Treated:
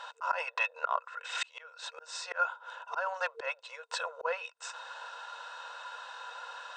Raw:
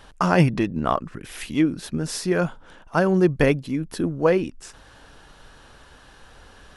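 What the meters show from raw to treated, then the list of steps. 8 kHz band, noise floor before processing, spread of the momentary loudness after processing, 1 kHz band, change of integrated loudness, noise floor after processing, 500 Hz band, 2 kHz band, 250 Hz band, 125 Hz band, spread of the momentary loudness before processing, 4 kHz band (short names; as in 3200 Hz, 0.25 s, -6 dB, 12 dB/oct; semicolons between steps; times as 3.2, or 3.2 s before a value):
-9.0 dB, -50 dBFS, 11 LU, -6.0 dB, -14.0 dB, -62 dBFS, -18.0 dB, -5.0 dB, under -40 dB, under -40 dB, 10 LU, -4.0 dB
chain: notch 2400 Hz, Q 10; small resonant body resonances 1000/1400/2600/3700 Hz, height 16 dB, ringing for 35 ms; dynamic EQ 1600 Hz, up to +5 dB, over -29 dBFS, Q 0.73; FFT band-pass 460–8600 Hz; auto swell 0.57 s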